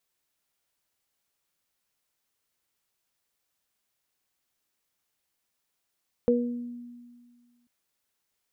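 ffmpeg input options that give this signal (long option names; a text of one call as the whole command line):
ffmpeg -f lavfi -i "aevalsrc='0.0794*pow(10,-3*t/1.85)*sin(2*PI*241*t)+0.141*pow(10,-3*t/0.51)*sin(2*PI*482*t)':duration=1.39:sample_rate=44100" out.wav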